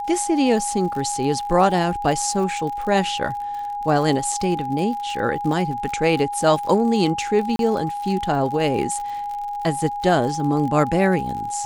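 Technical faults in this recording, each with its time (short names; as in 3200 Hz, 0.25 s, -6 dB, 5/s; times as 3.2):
crackle 65/s -29 dBFS
tone 820 Hz -25 dBFS
7.56–7.59 gap 32 ms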